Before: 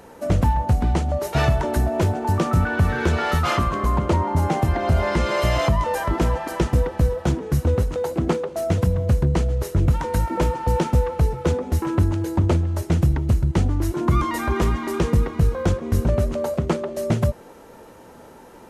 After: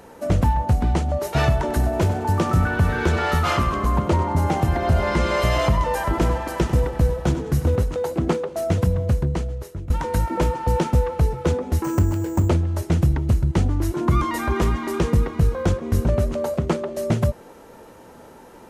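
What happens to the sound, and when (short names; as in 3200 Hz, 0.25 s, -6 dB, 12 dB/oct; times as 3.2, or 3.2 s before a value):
1.59–7.76 feedback echo 96 ms, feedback 42%, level -12 dB
8.95–9.9 fade out, to -18 dB
11.84–12.49 careless resampling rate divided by 6×, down filtered, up hold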